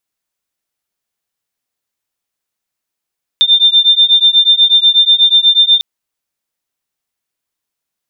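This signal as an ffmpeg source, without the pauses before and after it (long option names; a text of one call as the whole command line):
ffmpeg -f lavfi -i "aevalsrc='0.355*(sin(2*PI*3590*t)+sin(2*PI*3598.2*t))':duration=2.4:sample_rate=44100" out.wav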